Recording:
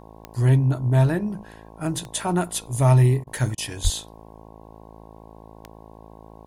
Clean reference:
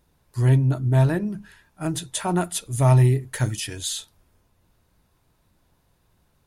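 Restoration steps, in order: de-click; de-hum 54.6 Hz, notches 20; de-plosive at 3.83; interpolate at 3.24/3.55, 27 ms

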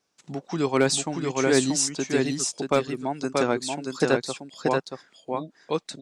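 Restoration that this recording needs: clip repair -9 dBFS; inverse comb 0.632 s -3.5 dB

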